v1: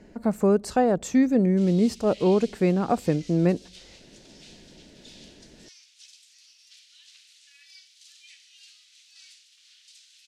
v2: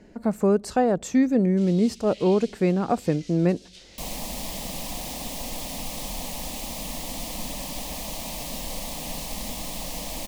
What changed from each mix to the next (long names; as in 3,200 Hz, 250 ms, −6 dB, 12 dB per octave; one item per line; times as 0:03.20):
second sound: unmuted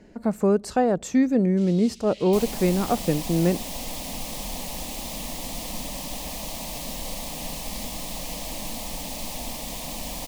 second sound: entry −1.65 s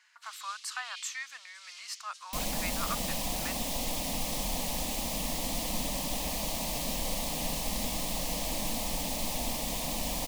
speech: add elliptic high-pass filter 1,100 Hz, stop band 60 dB
first sound: entry −1.35 s